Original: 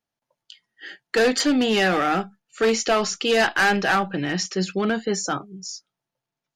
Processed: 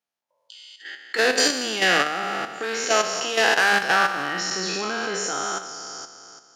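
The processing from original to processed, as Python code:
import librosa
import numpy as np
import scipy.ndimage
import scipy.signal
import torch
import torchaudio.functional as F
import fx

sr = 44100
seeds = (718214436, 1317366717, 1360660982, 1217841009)

y = fx.spec_trails(x, sr, decay_s=2.28)
y = fx.highpass(y, sr, hz=580.0, slope=6)
y = fx.level_steps(y, sr, step_db=9)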